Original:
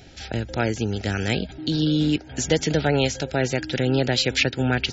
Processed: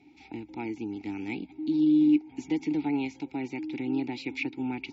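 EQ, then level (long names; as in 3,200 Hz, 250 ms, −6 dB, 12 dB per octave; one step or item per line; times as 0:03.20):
formant filter u
high-shelf EQ 4,900 Hz +4.5 dB
notch filter 3,100 Hz, Q 12
+2.0 dB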